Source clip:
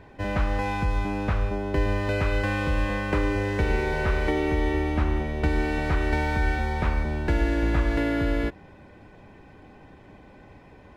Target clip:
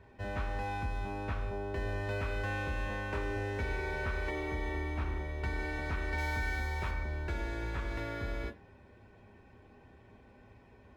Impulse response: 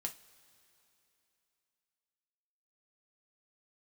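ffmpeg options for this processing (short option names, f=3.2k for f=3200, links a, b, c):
-filter_complex "[0:a]asettb=1/sr,asplit=3[a][b][c];[a]atrim=end=6.184[d];[b]atrim=start=6.18:end=6.91,asetpts=PTS-STARTPTS,afade=t=in:d=0.004:c=qsin,afade=t=out:st=0.726:d=0.004:c=qsin,highshelf=f=5.4k:g=11.5[e];[c]atrim=start=6.906[f];[d][e]acrossfade=d=0.004:c1=hsin:c2=qsin[g];[g][f]acrossfade=d=0.004:c1=qsin:c2=hsin,acrossover=split=680[h][i];[h]asoftclip=type=tanh:threshold=-24dB[j];[j][i]amix=inputs=2:normalize=0[k];[1:a]atrim=start_sample=2205,atrim=end_sample=6174,asetrate=57330,aresample=44100[l];[k][l]afir=irnorm=-1:irlink=0,volume=-5.5dB"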